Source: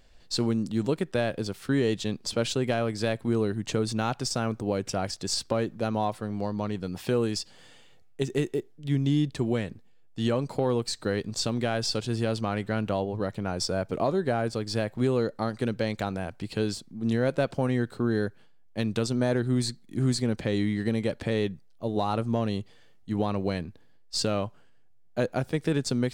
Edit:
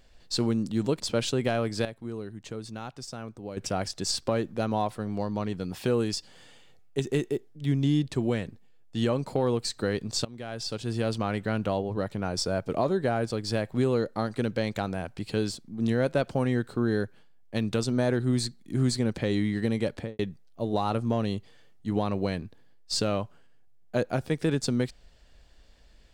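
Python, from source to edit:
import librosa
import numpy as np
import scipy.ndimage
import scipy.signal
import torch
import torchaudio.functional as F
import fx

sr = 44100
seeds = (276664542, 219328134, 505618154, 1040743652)

y = fx.studio_fade_out(x, sr, start_s=21.16, length_s=0.26)
y = fx.edit(y, sr, fx.cut(start_s=1.0, length_s=1.23),
    fx.clip_gain(start_s=3.08, length_s=1.72, db=-10.5),
    fx.fade_in_from(start_s=11.48, length_s=0.85, floor_db=-20.5), tone=tone)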